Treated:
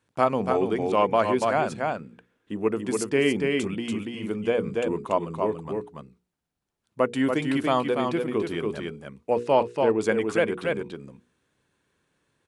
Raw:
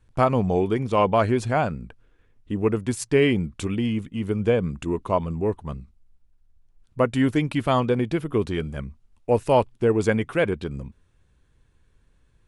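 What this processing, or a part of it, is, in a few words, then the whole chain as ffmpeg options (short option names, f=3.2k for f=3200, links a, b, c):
ducked delay: -filter_complex "[0:a]highpass=210,asplit=3[a][b][c];[b]adelay=286,volume=-3dB[d];[c]apad=whole_len=562908[e];[d][e]sidechaincompress=threshold=-23dB:ratio=8:attack=23:release=158[f];[a][f]amix=inputs=2:normalize=0,asettb=1/sr,asplit=3[g][h][i];[g]atrim=end=2.744[j];[h]atrim=start=2.74:end=3.67,asetpts=PTS-STARTPTS,afade=t=in:d=0.004:c=qsin,afade=t=out:st=0.926:d=0.004:c=qsin,bandreject=f=3.8k:w=13[k];[i]atrim=start=3.666[l];[j][k]acrossfade=d=0.004:c1=hsin:c2=qsin[m];[m][l]acrossfade=d=0.004:c1=qsin:c2=hsin,asettb=1/sr,asplit=3[n][o][p];[n]atrim=end=9.344[q];[o]atrim=start=9.34:end=10.01,asetpts=PTS-STARTPTS,afade=t=in:d=0.004:c=qsin,afade=t=out:st=0.666:d=0.004:c=qsin,lowpass=5.4k[r];[p]atrim=start=10.006[s];[q][r]acrossfade=d=0.004:c1=hsin:c2=qsin[t];[t][s]acrossfade=d=0.004:c1=qsin:c2=hsin,bandreject=f=60:t=h:w=6,bandreject=f=120:t=h:w=6,bandreject=f=180:t=h:w=6,bandreject=f=240:t=h:w=6,bandreject=f=300:t=h:w=6,bandreject=f=360:t=h:w=6,bandreject=f=420:t=h:w=6,bandreject=f=480:t=h:w=6,volume=-1.5dB"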